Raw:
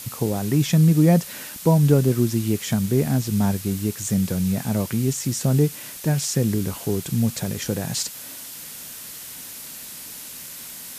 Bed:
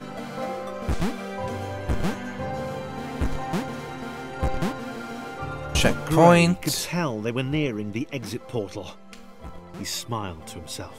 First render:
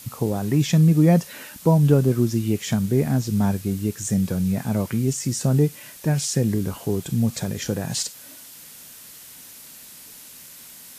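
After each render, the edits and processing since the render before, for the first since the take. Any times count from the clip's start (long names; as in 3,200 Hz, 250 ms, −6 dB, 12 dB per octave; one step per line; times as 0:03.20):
noise reduction from a noise print 6 dB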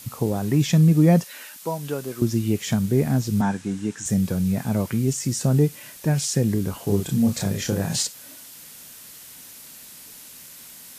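0:01.24–0:02.22: high-pass filter 1,100 Hz 6 dB per octave
0:03.41–0:04.06: loudspeaker in its box 170–8,400 Hz, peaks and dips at 270 Hz +3 dB, 390 Hz −4 dB, 600 Hz −5 dB, 860 Hz +7 dB, 1,600 Hz +7 dB, 4,500 Hz −5 dB
0:06.84–0:08.07: double-tracking delay 30 ms −3 dB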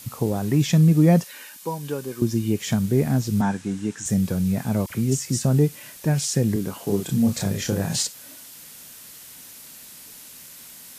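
0:01.31–0:02.60: notch comb filter 670 Hz
0:04.86–0:05.45: all-pass dispersion lows, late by 43 ms, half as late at 1,500 Hz
0:06.56–0:07.10: high-pass filter 150 Hz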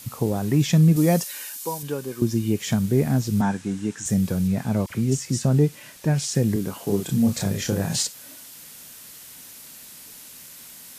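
0:00.96–0:01.83: bass and treble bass −6 dB, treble +9 dB
0:04.47–0:06.35: high-shelf EQ 10,000 Hz −9 dB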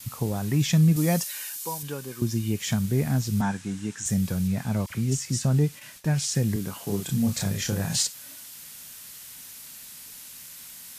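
noise gate with hold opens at −33 dBFS
parametric band 390 Hz −7.5 dB 2.1 octaves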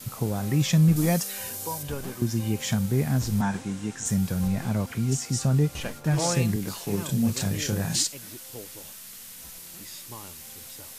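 mix in bed −14 dB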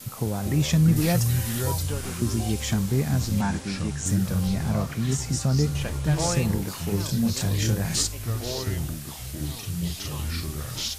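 delay with pitch and tempo change per echo 168 ms, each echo −5 semitones, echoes 3, each echo −6 dB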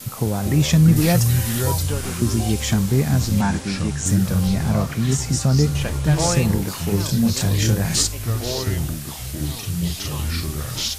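level +5.5 dB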